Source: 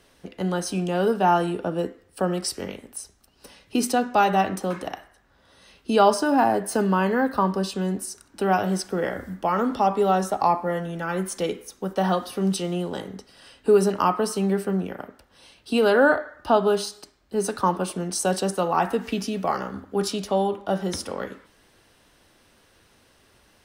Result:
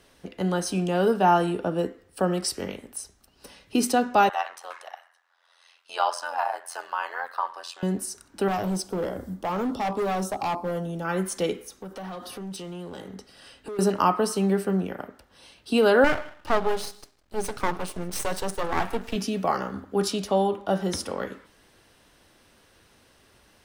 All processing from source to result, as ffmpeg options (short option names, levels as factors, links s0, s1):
-filter_complex "[0:a]asettb=1/sr,asplit=3[s0][s1][s2];[s0]atrim=end=4.294[s3];[s1]atrim=start=4.29:end=7.83,asetpts=PTS-STARTPTS,afade=t=in:d=0.004:c=qsin,afade=t=out:st=3.536:d=0.004:c=qsin,highpass=f=760:w=0.5412,highpass=f=760:w=1.3066,tremolo=f=86:d=0.857,highshelf=f=9100:g=-8[s4];[s2]atrim=start=7.826[s5];[s3][s4]acrossfade=d=0.004:c1=hsin:c2=qsin[s6];[s6][s5]acrossfade=d=0.004:c1=qsin:c2=hsin,asettb=1/sr,asplit=3[s7][s8][s9];[s7]atrim=end=8.484[s10];[s8]atrim=start=8.48:end=11.05,asetpts=PTS-STARTPTS,afade=t=in:d=0.004:c=qsin,afade=t=out:st=2.566:d=0.004:c=qsin,equalizer=f=1800:w=1.3:g=-14,asoftclip=type=hard:threshold=0.0668[s11];[s9]atrim=start=11.046[s12];[s10][s11]acrossfade=d=0.004:c1=hsin:c2=qsin[s13];[s13][s12]acrossfade=d=0.004:c1=qsin:c2=hsin,asettb=1/sr,asplit=3[s14][s15][s16];[s14]atrim=end=11.564[s17];[s15]atrim=start=11.56:end=13.79,asetpts=PTS-STARTPTS,afade=t=in:d=0.004:c=qsin,afade=t=out:st=2.226:d=0.004:c=qsin,bandreject=f=980:w=20,acompressor=threshold=0.0178:ratio=3:attack=3.2:release=140:knee=1:detection=peak,asoftclip=type=hard:threshold=0.0251[s18];[s16]atrim=start=13.786[s19];[s17][s18]acrossfade=d=0.004:c1=hsin:c2=qsin[s20];[s20][s19]acrossfade=d=0.004:c1=qsin:c2=hsin,asettb=1/sr,asplit=3[s21][s22][s23];[s21]atrim=end=16.044[s24];[s22]atrim=start=16.04:end=19.16,asetpts=PTS-STARTPTS,afade=t=in:d=0.004:c=qsin,afade=t=out:st=3.116:d=0.004:c=qsin,aeval=exprs='max(val(0),0)':c=same,aecho=1:1:156:0.0708,atrim=end_sample=137592[s25];[s23]atrim=start=19.156[s26];[s24][s25]acrossfade=d=0.004:c1=hsin:c2=qsin[s27];[s27][s26]acrossfade=d=0.004:c1=qsin:c2=hsin"